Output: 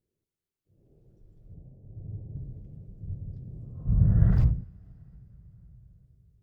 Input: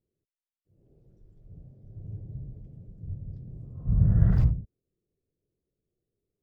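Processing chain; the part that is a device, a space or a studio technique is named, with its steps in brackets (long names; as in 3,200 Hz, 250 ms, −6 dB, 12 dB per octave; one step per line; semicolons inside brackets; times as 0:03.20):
0:01.54–0:02.37: Butterworth low-pass 1,000 Hz 96 dB per octave
compressed reverb return (on a send at −9 dB: convolution reverb RT60 2.5 s, pre-delay 100 ms + downward compressor 4 to 1, threshold −39 dBFS, peak gain reduction 19 dB)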